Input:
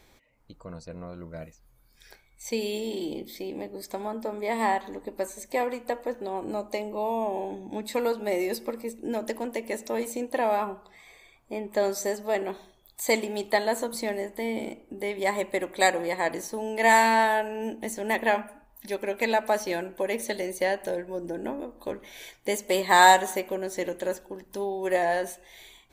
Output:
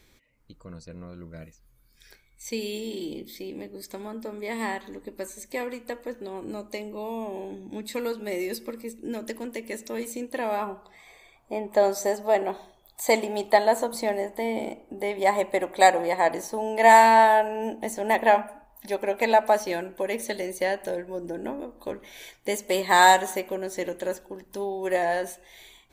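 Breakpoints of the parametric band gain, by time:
parametric band 760 Hz 1 octave
0:10.29 −9.5 dB
0:10.69 +0.5 dB
0:11.58 +7.5 dB
0:19.40 +7.5 dB
0:19.83 0 dB

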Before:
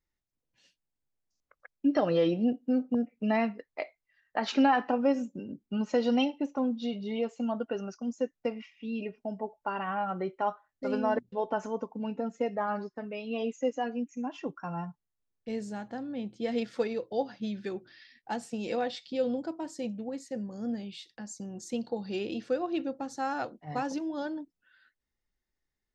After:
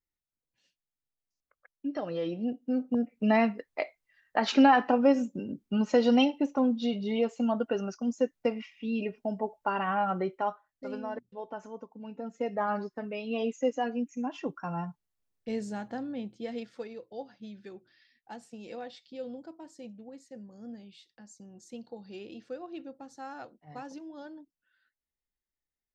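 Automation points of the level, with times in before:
0:02.14 −8 dB
0:03.28 +3.5 dB
0:10.14 +3.5 dB
0:11.08 −9 dB
0:12.03 −9 dB
0:12.62 +1.5 dB
0:16.04 +1.5 dB
0:16.78 −10 dB

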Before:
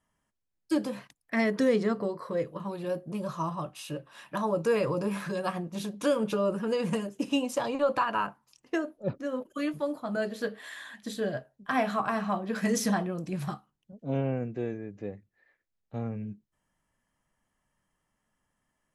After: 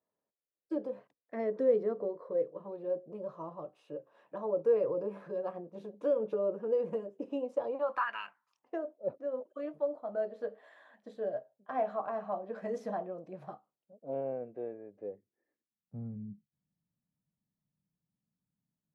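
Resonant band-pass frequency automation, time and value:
resonant band-pass, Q 2.6
0:07.69 490 Hz
0:08.23 2,800 Hz
0:08.76 590 Hz
0:14.96 590 Hz
0:15.98 160 Hz

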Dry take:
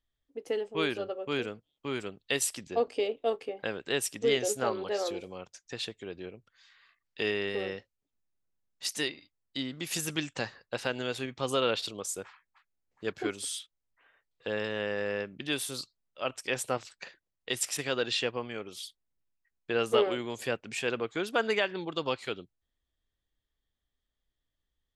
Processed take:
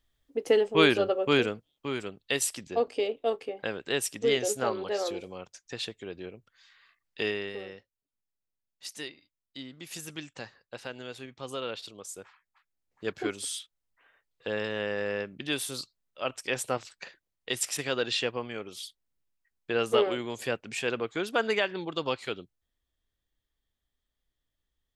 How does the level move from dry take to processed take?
0:01.29 +9 dB
0:01.96 +1 dB
0:07.23 +1 dB
0:07.66 −7.5 dB
0:11.90 −7.5 dB
0:13.08 +1 dB

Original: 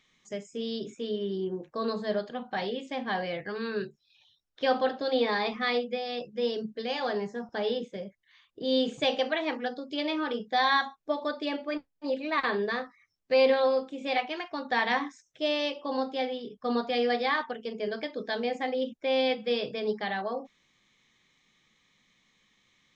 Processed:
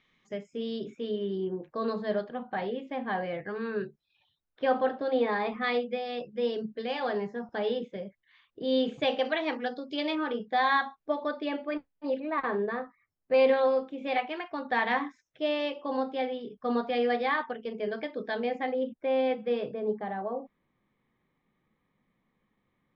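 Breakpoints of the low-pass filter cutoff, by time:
3,000 Hz
from 0:02.24 2,000 Hz
from 0:05.64 3,100 Hz
from 0:09.25 5,000 Hz
from 0:10.15 2,700 Hz
from 0:12.20 1,400 Hz
from 0:13.34 2,700 Hz
from 0:18.72 1,700 Hz
from 0:19.74 1,000 Hz

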